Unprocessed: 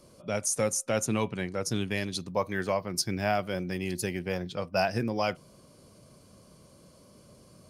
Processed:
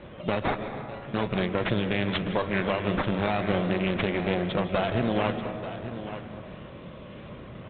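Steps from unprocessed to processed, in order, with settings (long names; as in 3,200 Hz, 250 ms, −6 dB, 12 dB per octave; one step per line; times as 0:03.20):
low-shelf EQ 64 Hz +3 dB
in parallel at −1 dB: brickwall limiter −24 dBFS, peak gain reduction 10 dB
on the sum: downward compressor 6 to 1, threshold −26 dBFS, peak gain reduction 7.5 dB
asymmetric clip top −38.5 dBFS, bottom −19 dBFS
sample-and-hold swept by an LFO 10×, swing 100% 0.4 Hz
0:00.56–0:01.14: tuned comb filter 140 Hz, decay 0.74 s, harmonics all, mix 90%
harmonic generator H 4 −42 dB, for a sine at −17.5 dBFS
on a send: single-tap delay 885 ms −12 dB
on the sum: comb and all-pass reverb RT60 2 s, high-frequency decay 0.3×, pre-delay 115 ms, DRR 8.5 dB
level +6.5 dB
G.726 32 kbit/s 8,000 Hz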